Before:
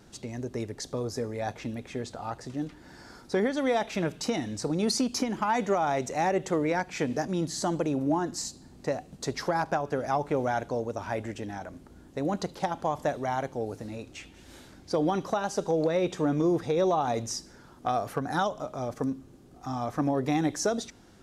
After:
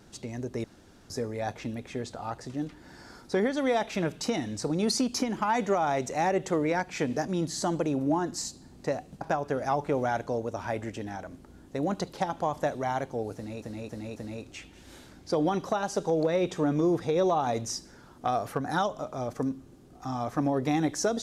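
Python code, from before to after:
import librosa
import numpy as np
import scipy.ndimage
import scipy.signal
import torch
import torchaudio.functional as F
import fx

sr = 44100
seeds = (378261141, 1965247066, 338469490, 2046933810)

y = fx.edit(x, sr, fx.room_tone_fill(start_s=0.64, length_s=0.46),
    fx.cut(start_s=9.21, length_s=0.42),
    fx.repeat(start_s=13.77, length_s=0.27, count=4), tone=tone)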